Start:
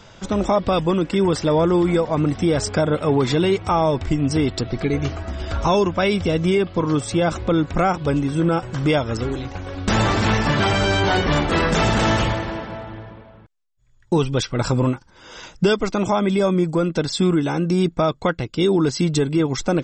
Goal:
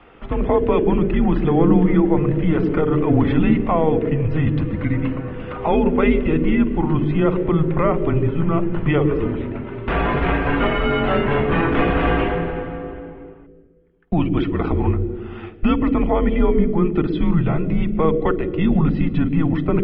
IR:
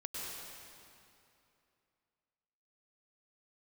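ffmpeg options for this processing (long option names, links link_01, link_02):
-filter_complex "[0:a]highpass=frequency=150:width_type=q:width=0.5412,highpass=frequency=150:width_type=q:width=1.307,lowpass=frequency=2900:width_type=q:width=0.5176,lowpass=frequency=2900:width_type=q:width=0.7071,lowpass=frequency=2900:width_type=q:width=1.932,afreqshift=-160,asplit=2[link_01][link_02];[link_02]lowshelf=frequency=590:width_type=q:width=3:gain=13.5[link_03];[1:a]atrim=start_sample=2205,asetrate=74970,aresample=44100,adelay=50[link_04];[link_03][link_04]afir=irnorm=-1:irlink=0,volume=-12dB[link_05];[link_01][link_05]amix=inputs=2:normalize=0"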